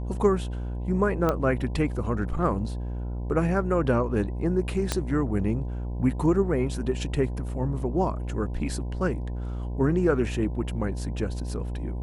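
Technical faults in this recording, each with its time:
buzz 60 Hz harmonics 17 -31 dBFS
1.29 pop -12 dBFS
4.92 pop -10 dBFS

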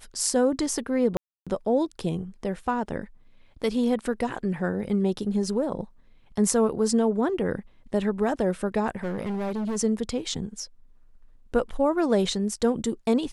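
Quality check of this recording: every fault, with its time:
1.17–1.47 gap 0.296 s
9.03–9.77 clipped -26 dBFS

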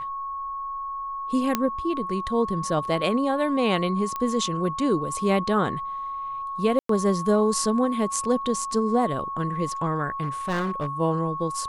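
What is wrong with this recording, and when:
tone 1100 Hz -29 dBFS
1.55 pop -7 dBFS
4.16 pop -16 dBFS
6.79–6.89 gap 0.103 s
10.22–10.88 clipped -22 dBFS

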